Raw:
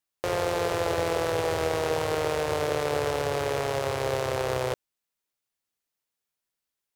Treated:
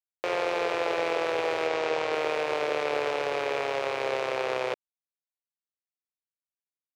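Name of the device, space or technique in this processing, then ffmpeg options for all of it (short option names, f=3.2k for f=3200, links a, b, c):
pocket radio on a weak battery: -filter_complex "[0:a]highpass=320,lowpass=4.4k,aeval=exprs='sgn(val(0))*max(abs(val(0))-0.00237,0)':c=same,equalizer=f=2.4k:t=o:w=0.33:g=7,asettb=1/sr,asplit=3[a][b][c];[a]atrim=end=1.674[d];[b]atrim=start=1.67:end=2.13,asetpts=PTS-STARTPTS,afade=t=in:d=0.004:c=qsin,afade=t=out:st=0.456:d=0.004:c=qsin,lowpass=f=8.7k:w=0.5412,lowpass=f=8.7k:w=1.3066[e];[c]atrim=start=2.126[f];[d][e]acrossfade=d=0.004:c1=hsin:c2=qsin[g];[g][f]acrossfade=d=0.004:c1=qsin:c2=hsin"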